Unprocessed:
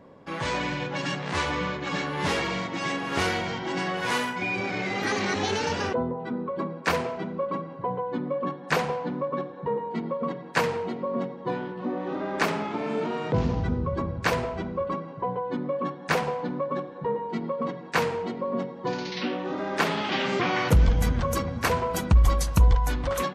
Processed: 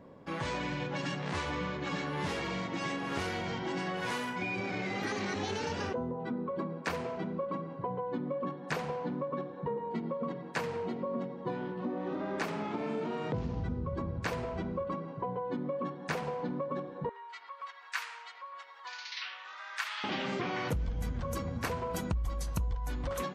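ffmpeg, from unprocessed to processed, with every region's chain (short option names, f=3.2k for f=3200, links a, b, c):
-filter_complex "[0:a]asettb=1/sr,asplit=3[a][b][c];[a]atrim=end=17.094[d];[b]atrim=start=17.09:end=20.04,asetpts=PTS-STARTPTS,afade=t=in:d=0.004:c=qsin,afade=t=out:st=2.946:d=0.004:c=qsin,highpass=f=1.2k:w=0.5412,highpass=f=1.2k:w=1.3066,acompressor=mode=upward:threshold=-39dB:ratio=2.5:attack=3.2:release=140:knee=2.83:detection=peak[e];[c]atrim=start=20.036[f];[d][e]acrossfade=d=0.004:c1=hsin:c2=qsin[g];[g][f]acrossfade=d=0.004:c1=qsin:c2=hsin,lowshelf=f=440:g=3.5,bandreject=f=399.3:t=h:w=4,bandreject=f=798.6:t=h:w=4,bandreject=f=1.1979k:t=h:w=4,bandreject=f=1.5972k:t=h:w=4,bandreject=f=1.9965k:t=h:w=4,bandreject=f=2.3958k:t=h:w=4,bandreject=f=2.7951k:t=h:w=4,bandreject=f=3.1944k:t=h:w=4,bandreject=f=3.5937k:t=h:w=4,bandreject=f=3.993k:t=h:w=4,bandreject=f=4.3923k:t=h:w=4,bandreject=f=4.7916k:t=h:w=4,bandreject=f=5.1909k:t=h:w=4,bandreject=f=5.5902k:t=h:w=4,bandreject=f=5.9895k:t=h:w=4,bandreject=f=6.3888k:t=h:w=4,bandreject=f=6.7881k:t=h:w=4,acompressor=threshold=-27dB:ratio=5,volume=-4.5dB"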